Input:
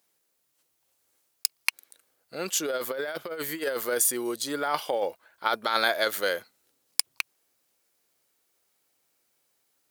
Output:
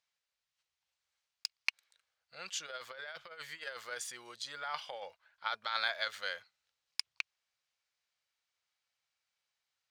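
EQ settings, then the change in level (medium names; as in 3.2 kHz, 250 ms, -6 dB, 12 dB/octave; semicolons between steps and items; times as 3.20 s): distance through air 150 m; amplifier tone stack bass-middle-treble 10-0-10; band-stop 420 Hz, Q 14; -1.5 dB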